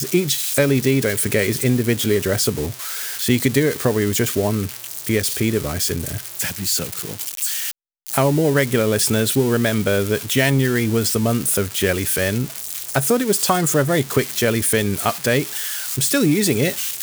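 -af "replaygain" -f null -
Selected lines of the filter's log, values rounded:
track_gain = +0.8 dB
track_peak = 0.551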